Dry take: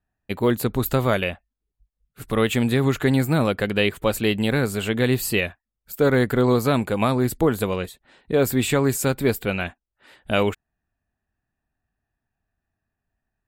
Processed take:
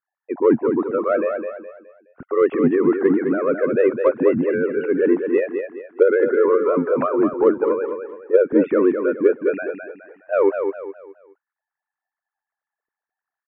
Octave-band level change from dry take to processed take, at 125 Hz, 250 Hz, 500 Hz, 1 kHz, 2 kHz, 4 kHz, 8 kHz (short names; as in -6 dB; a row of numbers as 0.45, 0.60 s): -13.5 dB, +2.0 dB, +6.0 dB, 0.0 dB, -3.5 dB, under -25 dB, under -40 dB